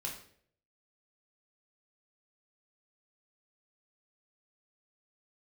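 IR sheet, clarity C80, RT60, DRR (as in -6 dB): 10.5 dB, 0.60 s, -2.0 dB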